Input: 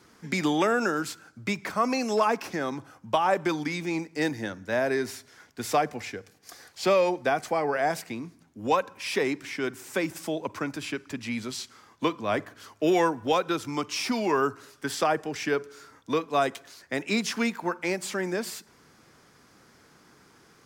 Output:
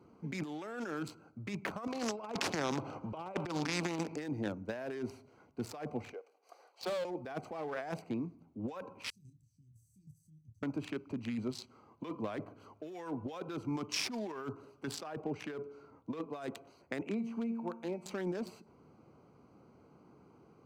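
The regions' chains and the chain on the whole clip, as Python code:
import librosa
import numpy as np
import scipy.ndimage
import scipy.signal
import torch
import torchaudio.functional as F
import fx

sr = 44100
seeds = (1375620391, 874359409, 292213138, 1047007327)

y = fx.chain(x, sr, fx.bandpass_edges(low_hz=110.0, high_hz=5300.0),
    fx.over_compress(threshold_db=-31.0, ratio=-0.5),
    fx.spectral_comp(ratio=2.0), at=(1.87, 4.16))
y = fx.chain(y, sr, fx.highpass(hz=490.0, slope=24),
    fx.clip_hard(threshold_db=-29.5), at=(6.13, 7.05))
y = fx.chain(y, sr, fx.cheby2_bandstop(low_hz=500.0, high_hz=1700.0, order=4, stop_db=80),
    fx.level_steps(step_db=10),
    fx.doubler(ms=26.0, db=-7), at=(9.1, 10.63))
y = fx.chain(y, sr, fx.high_shelf(hz=8300.0, db=-11.0),
    fx.quant_float(bits=6), at=(15.1, 16.36))
y = fx.chain(y, sr, fx.peak_eq(hz=4700.0, db=-6.0, octaves=0.76),
    fx.comb_fb(f0_hz=230.0, decay_s=0.79, harmonics='all', damping=0.0, mix_pct=70),
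    fx.band_squash(depth_pct=70), at=(17.01, 18.06))
y = fx.wiener(y, sr, points=25)
y = scipy.signal.sosfilt(scipy.signal.butter(2, 63.0, 'highpass', fs=sr, output='sos'), y)
y = fx.over_compress(y, sr, threshold_db=-33.0, ratio=-1.0)
y = y * librosa.db_to_amplitude(-5.0)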